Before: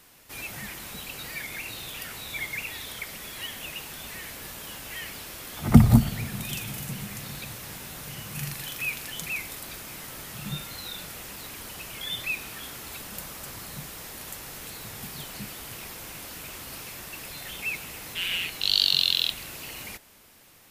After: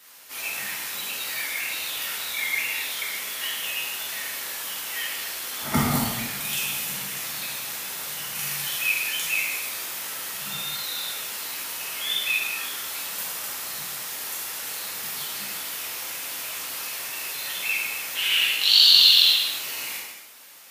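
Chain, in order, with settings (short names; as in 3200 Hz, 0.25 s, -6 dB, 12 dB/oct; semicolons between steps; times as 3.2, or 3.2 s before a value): HPF 1100 Hz 6 dB/oct; non-linear reverb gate 0.36 s falling, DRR -6.5 dB; gain +1 dB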